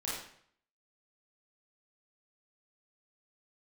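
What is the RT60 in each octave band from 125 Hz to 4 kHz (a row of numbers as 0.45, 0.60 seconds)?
0.65, 0.60, 0.60, 0.60, 0.60, 0.55 seconds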